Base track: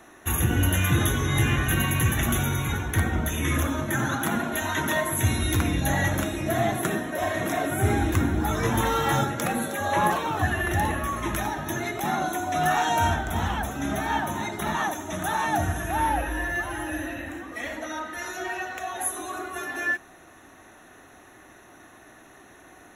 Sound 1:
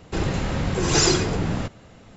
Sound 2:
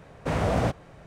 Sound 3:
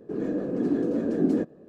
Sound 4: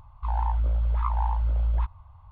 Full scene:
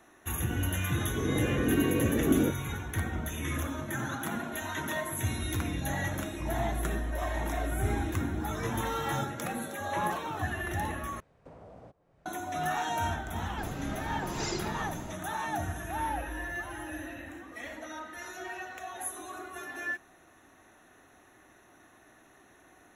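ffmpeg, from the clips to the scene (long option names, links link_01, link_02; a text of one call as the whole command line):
ffmpeg -i bed.wav -i cue0.wav -i cue1.wav -i cue2.wav -i cue3.wav -filter_complex "[0:a]volume=-8.5dB[link_01];[4:a]lowpass=1300[link_02];[2:a]acrossover=split=300|1000[link_03][link_04][link_05];[link_03]acompressor=threshold=-40dB:ratio=4[link_06];[link_04]acompressor=threshold=-35dB:ratio=4[link_07];[link_05]acompressor=threshold=-57dB:ratio=4[link_08];[link_06][link_07][link_08]amix=inputs=3:normalize=0[link_09];[1:a]highshelf=frequency=5700:gain=-5[link_10];[link_01]asplit=2[link_11][link_12];[link_11]atrim=end=11.204[link_13];[link_09]atrim=end=1.06,asetpts=PTS-STARTPTS,volume=-16dB[link_14];[link_12]atrim=start=12.256[link_15];[3:a]atrim=end=1.68,asetpts=PTS-STARTPTS,volume=-2.5dB,afade=type=in:duration=0.004:curve=hsin,afade=type=out:start_time=1.676:duration=0.004:curve=hsin,adelay=1070[link_16];[link_02]atrim=end=2.31,asetpts=PTS-STARTPTS,volume=-10dB,afade=type=in:duration=0.004:curve=hsin,afade=type=out:start_time=2.306:duration=0.004:curve=hsin,adelay=6170[link_17];[link_10]atrim=end=2.16,asetpts=PTS-STARTPTS,volume=-15.5dB,afade=type=in:duration=0.004:curve=hsin,afade=type=out:start_time=2.156:duration=0.004:curve=hsin,adelay=13450[link_18];[link_13][link_14]acrossfade=duration=0.004:curve1=hsin:curve2=hsin[link_19];[link_19][link_15]acrossfade=duration=0.004:curve1=hsin:curve2=hsin[link_20];[link_20][link_16][link_17][link_18]amix=inputs=4:normalize=0" out.wav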